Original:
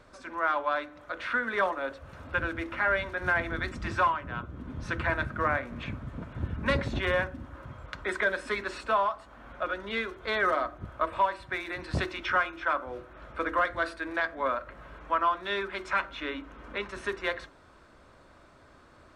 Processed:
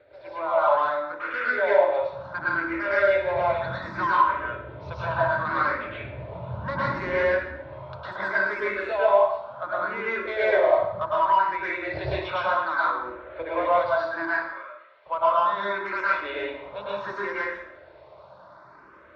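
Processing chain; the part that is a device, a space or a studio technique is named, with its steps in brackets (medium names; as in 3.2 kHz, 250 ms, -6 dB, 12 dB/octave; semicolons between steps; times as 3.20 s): 14.33–15.06 s: differentiator; barber-pole phaser into a guitar amplifier (barber-pole phaser +0.68 Hz; saturation -24 dBFS, distortion -15 dB; cabinet simulation 110–4100 Hz, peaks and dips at 240 Hz -10 dB, 580 Hz +9 dB, 940 Hz +7 dB, 3 kHz -6 dB); plate-style reverb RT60 0.73 s, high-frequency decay 0.85×, pre-delay 95 ms, DRR -7.5 dB; trim -1 dB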